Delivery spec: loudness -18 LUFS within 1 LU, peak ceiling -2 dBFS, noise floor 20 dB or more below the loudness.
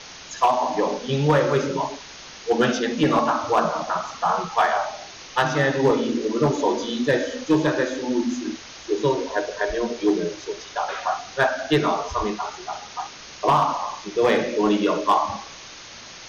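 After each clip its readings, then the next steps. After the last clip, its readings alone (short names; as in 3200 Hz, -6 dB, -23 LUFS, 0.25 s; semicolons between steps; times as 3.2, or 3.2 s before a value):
clipped 0.4%; flat tops at -11.0 dBFS; noise floor -41 dBFS; noise floor target -43 dBFS; loudness -23.0 LUFS; peak -11.0 dBFS; loudness target -18.0 LUFS
-> clip repair -11 dBFS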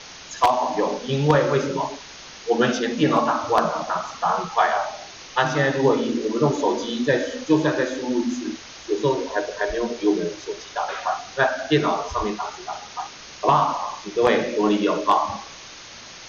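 clipped 0.0%; noise floor -41 dBFS; noise floor target -43 dBFS
-> denoiser 6 dB, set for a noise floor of -41 dBFS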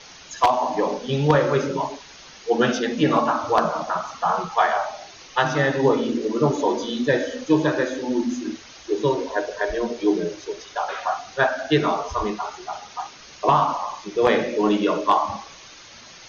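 noise floor -45 dBFS; loudness -22.5 LUFS; peak -2.0 dBFS; loudness target -18.0 LUFS
-> gain +4.5 dB; limiter -2 dBFS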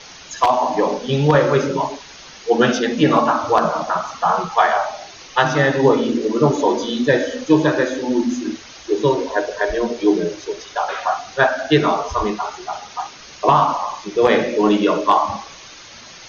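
loudness -18.0 LUFS; peak -2.0 dBFS; noise floor -40 dBFS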